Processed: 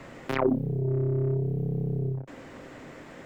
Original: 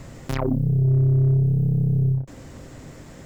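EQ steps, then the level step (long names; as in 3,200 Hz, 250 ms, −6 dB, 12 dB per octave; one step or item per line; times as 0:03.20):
three-way crossover with the lows and the highs turned down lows −14 dB, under 210 Hz, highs −22 dB, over 2,700 Hz
dynamic equaliser 380 Hz, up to +4 dB, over −44 dBFS, Q 2.4
high-shelf EQ 2,400 Hz +12 dB
0.0 dB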